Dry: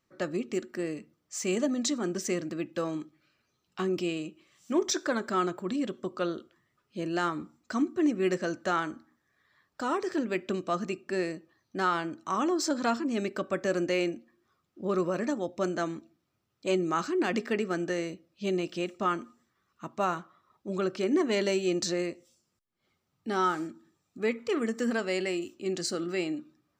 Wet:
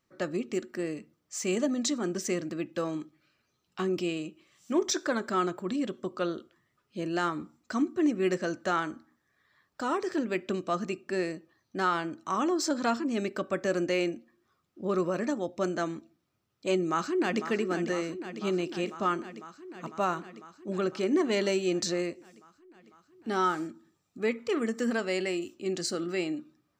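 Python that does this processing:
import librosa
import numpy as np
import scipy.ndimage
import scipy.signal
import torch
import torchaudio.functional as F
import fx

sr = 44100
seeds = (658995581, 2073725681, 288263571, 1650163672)

y = fx.echo_throw(x, sr, start_s=16.75, length_s=0.7, ms=500, feedback_pct=80, wet_db=-10.0)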